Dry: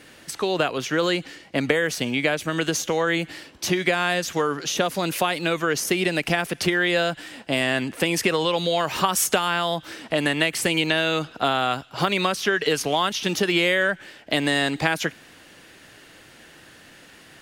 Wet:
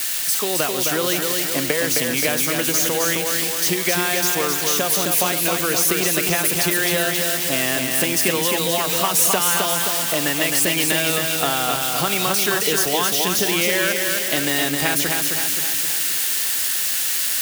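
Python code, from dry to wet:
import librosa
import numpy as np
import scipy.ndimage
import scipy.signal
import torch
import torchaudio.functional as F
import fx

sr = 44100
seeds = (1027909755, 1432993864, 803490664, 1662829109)

y = x + 0.5 * 10.0 ** (-13.5 / 20.0) * np.diff(np.sign(x), prepend=np.sign(x[:1]))
y = fx.echo_feedback(y, sr, ms=263, feedback_pct=56, wet_db=-4.0)
y = y * 10.0 ** (-1.5 / 20.0)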